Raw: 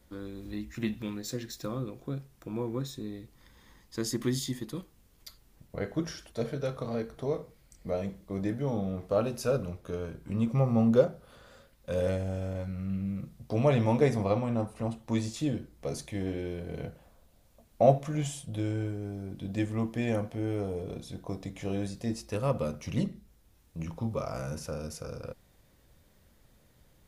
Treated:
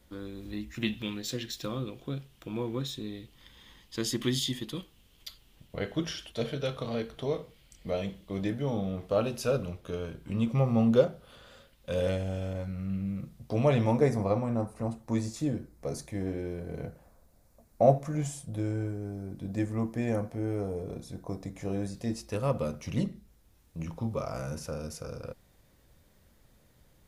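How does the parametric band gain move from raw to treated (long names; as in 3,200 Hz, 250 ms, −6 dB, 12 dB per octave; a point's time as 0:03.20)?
parametric band 3,100 Hz 0.7 octaves
+4.5 dB
from 0:00.83 +13.5 dB
from 0:08.48 +7.5 dB
from 0:12.53 +1 dB
from 0:13.91 −10 dB
from 0:21.94 −0.5 dB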